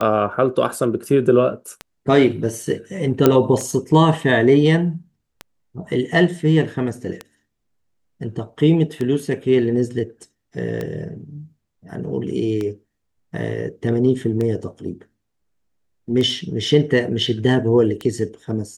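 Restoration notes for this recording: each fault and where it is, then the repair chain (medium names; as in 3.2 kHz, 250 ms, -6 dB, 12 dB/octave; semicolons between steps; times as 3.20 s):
tick 33 1/3 rpm -13 dBFS
3.26 s: pop -1 dBFS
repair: de-click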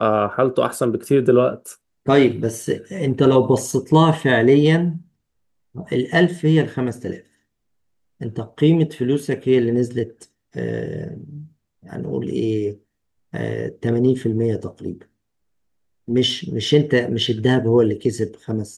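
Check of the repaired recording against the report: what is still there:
nothing left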